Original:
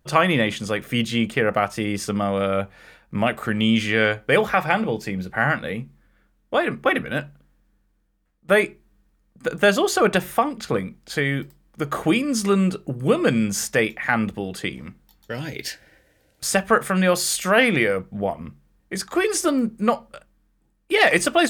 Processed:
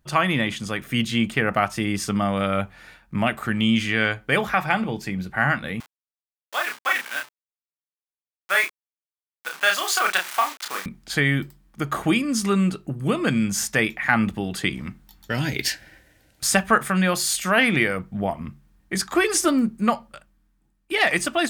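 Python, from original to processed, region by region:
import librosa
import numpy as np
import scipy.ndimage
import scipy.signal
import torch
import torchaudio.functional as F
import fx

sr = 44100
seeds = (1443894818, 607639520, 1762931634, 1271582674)

y = fx.chain(x, sr, fx.delta_hold(step_db=-29.0),
    fx.highpass(hz=1000.0, slope=12),
    fx.doubler(ms=31.0, db=-4.0), at=(5.8, 10.86))
y = fx.peak_eq(y, sr, hz=490.0, db=-8.5, octaves=0.6)
y = fx.rider(y, sr, range_db=10, speed_s=2.0)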